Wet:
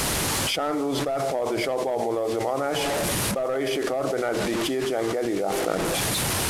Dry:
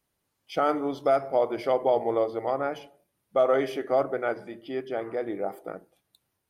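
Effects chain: one-bit delta coder 64 kbps, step -40 dBFS; level flattener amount 100%; trim -6.5 dB

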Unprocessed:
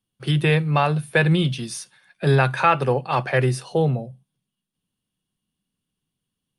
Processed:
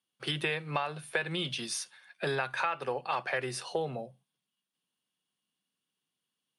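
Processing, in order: frequency weighting A; compression 6:1, threshold -27 dBFS, peak gain reduction 14.5 dB; trim -1.5 dB

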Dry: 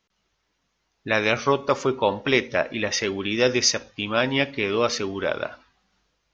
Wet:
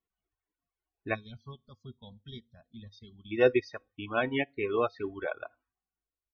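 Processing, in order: reverb removal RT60 1.8 s; time-frequency box 1.14–3.31 s, 250–3100 Hz -22 dB; comb 2.7 ms, depth 39%; loudest bins only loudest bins 64; distance through air 450 m; feedback comb 100 Hz, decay 0.23 s, harmonics odd, mix 40%; upward expansion 1.5:1, over -48 dBFS; trim +3.5 dB

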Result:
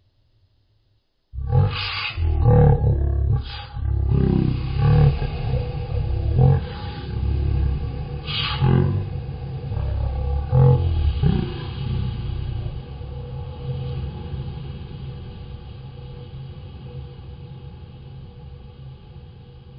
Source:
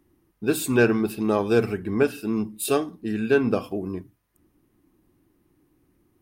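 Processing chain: echo that smears into a reverb 998 ms, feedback 50%, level -11 dB; wide varispeed 0.314×; trim +3 dB

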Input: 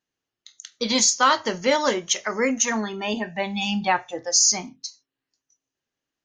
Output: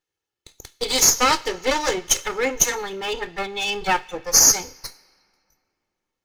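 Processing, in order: comb filter that takes the minimum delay 2.3 ms; on a send at -22 dB: tilt shelf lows -10 dB, about 1.3 kHz + reverberation RT60 2.8 s, pre-delay 6 ms; on the sum: dynamic bell 6.7 kHz, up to +6 dB, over -33 dBFS, Q 1; trim +1 dB

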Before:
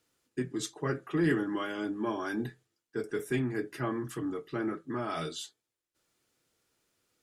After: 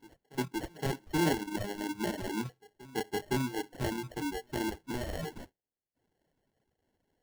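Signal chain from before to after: sample-and-hold 36×; reverse echo 515 ms -20.5 dB; reverb removal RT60 0.79 s

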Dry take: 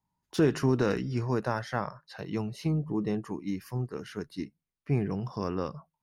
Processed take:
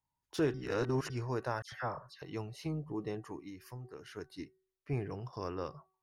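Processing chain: 4.93–5.33 s: expander -32 dBFS; peaking EQ 200 Hz -12 dB 0.61 oct; 0.54–1.10 s: reverse; de-hum 377.3 Hz, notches 5; 1.62–2.22 s: phase dispersion lows, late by 100 ms, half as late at 2.1 kHz; 3.42–4.16 s: compression 5:1, threshold -39 dBFS, peak gain reduction 7.5 dB; trim -5 dB

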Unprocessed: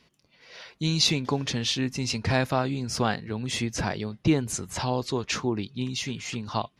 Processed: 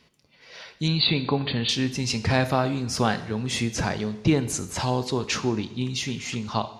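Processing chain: 0.88–1.69 s: brick-wall FIR low-pass 4.7 kHz; two-slope reverb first 0.81 s, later 2.9 s, from -19 dB, DRR 10.5 dB; trim +2 dB

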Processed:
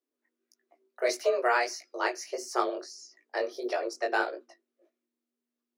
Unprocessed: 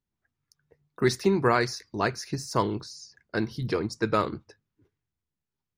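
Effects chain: chorus 1.6 Hz, delay 16 ms, depth 5.9 ms; frequency shift +240 Hz

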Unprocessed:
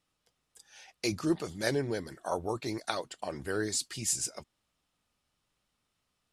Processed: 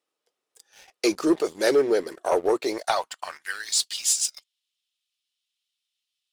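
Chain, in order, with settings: high-pass sweep 410 Hz -> 3.3 kHz, 2.63–3.77 s; waveshaping leveller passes 2

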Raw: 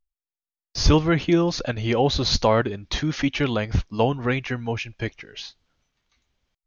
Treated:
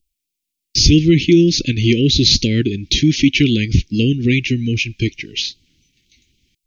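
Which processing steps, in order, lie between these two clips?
bass shelf 61 Hz -10.5 dB; in parallel at +1 dB: compression, threshold -31 dBFS, peak gain reduction 16.5 dB; on the sum: LFO notch saw down 3.8 Hz 790–2000 Hz; elliptic band-stop 340–2300 Hz, stop band 70 dB; loudness maximiser +11 dB; trim -1 dB

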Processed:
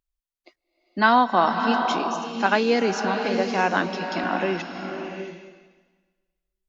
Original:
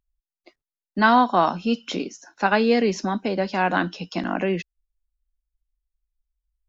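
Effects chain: bass shelf 220 Hz -7.5 dB; swelling reverb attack 670 ms, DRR 5 dB

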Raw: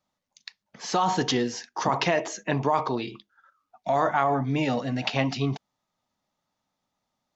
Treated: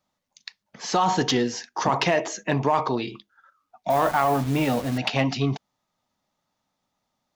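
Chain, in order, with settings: 3.90–4.98 s: send-on-delta sampling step -34 dBFS; in parallel at -3 dB: overload inside the chain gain 17.5 dB; on the sum: trim -2 dB

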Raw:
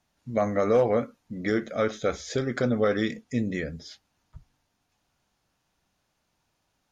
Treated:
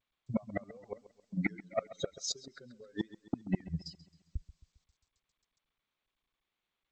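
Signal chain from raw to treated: expander on every frequency bin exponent 3; gate -51 dBFS, range -42 dB; 1.82–3.88 s: peaking EQ 540 Hz +12.5 dB 1.7 oct; compression 10:1, threshold -30 dBFS, peak gain reduction 17.5 dB; inverted gate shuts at -29 dBFS, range -37 dB; saturation -37.5 dBFS, distortion -11 dB; loudest bins only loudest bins 64; distance through air 69 m; bucket-brigade echo 134 ms, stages 4096, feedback 47%, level -17 dB; trim +16 dB; G.722 64 kbps 16 kHz

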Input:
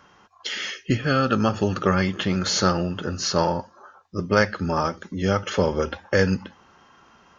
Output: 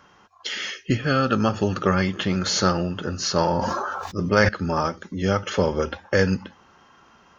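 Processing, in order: 3.41–4.49 s: decay stretcher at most 20 dB/s

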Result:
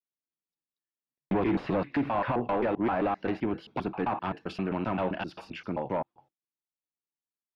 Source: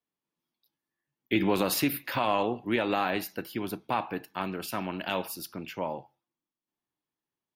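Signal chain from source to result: slices played last to first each 131 ms, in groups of 2; gate with hold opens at -48 dBFS; treble shelf 8.5 kHz +7 dB; hard clipper -27 dBFS, distortion -7 dB; low-pass that closes with the level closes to 1.9 kHz, closed at -29 dBFS; tape spacing loss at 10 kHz 21 dB; trim +5.5 dB

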